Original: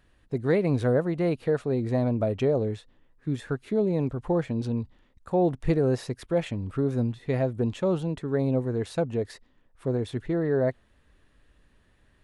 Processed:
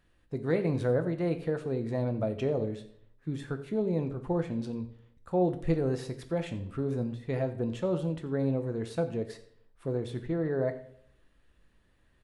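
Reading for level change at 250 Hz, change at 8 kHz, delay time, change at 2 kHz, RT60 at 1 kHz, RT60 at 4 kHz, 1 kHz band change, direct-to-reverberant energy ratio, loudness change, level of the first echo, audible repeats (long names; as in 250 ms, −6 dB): −4.5 dB, can't be measured, 88 ms, −4.5 dB, 0.55 s, 0.55 s, −4.5 dB, 7.0 dB, −4.5 dB, −19.0 dB, 1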